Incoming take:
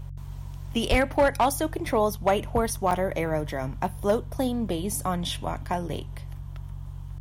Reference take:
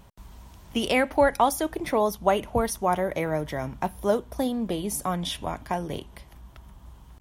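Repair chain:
clipped peaks rebuilt −13.5 dBFS
hum removal 46.1 Hz, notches 3
0:00.90–0:01.02: high-pass filter 140 Hz 24 dB per octave
repair the gap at 0:02.91, 2.6 ms

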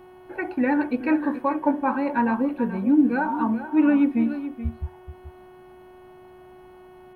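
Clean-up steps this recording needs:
hum removal 367.1 Hz, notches 9
echo removal 429 ms −12 dB

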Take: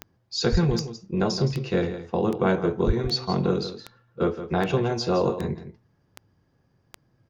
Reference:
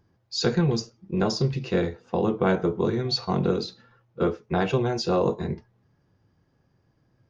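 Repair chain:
click removal
0:00.51–0:00.63: high-pass filter 140 Hz 24 dB per octave
0:02.86–0:02.98: high-pass filter 140 Hz 24 dB per octave
echo removal 166 ms −11.5 dB

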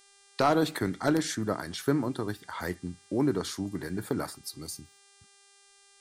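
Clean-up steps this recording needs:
clipped peaks rebuilt −14 dBFS
hum removal 398.4 Hz, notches 25

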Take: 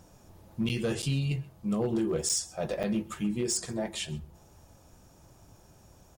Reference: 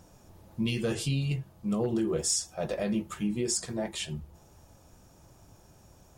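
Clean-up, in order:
clipped peaks rebuilt −22.5 dBFS
repair the gap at 0:00.69/0:01.02/0:02.29/0:02.83, 7.6 ms
echo removal 130 ms −22 dB

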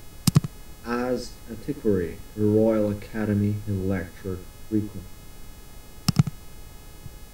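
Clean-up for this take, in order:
hum removal 422.5 Hz, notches 37
noise reduction from a noise print 26 dB
echo removal 78 ms −13.5 dB

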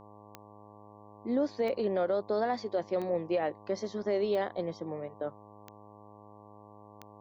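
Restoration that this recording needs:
click removal
hum removal 104.2 Hz, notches 11

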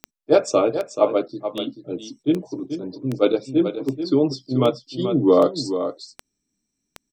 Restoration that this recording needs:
click removal
echo removal 433 ms −9.5 dB

